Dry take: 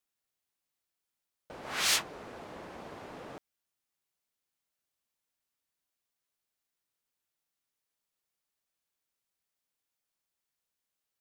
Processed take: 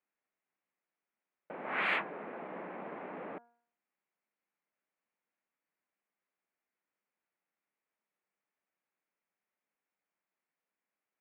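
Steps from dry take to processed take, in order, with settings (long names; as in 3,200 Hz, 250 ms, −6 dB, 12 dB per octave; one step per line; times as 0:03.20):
elliptic band-pass filter 180–2,300 Hz, stop band 40 dB
hum removal 236.7 Hz, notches 7
level +3 dB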